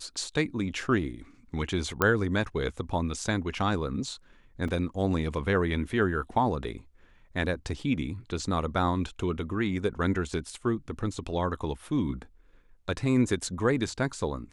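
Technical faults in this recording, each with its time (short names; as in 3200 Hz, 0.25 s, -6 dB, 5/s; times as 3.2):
2.02 pop -9 dBFS
4.68 gap 4.1 ms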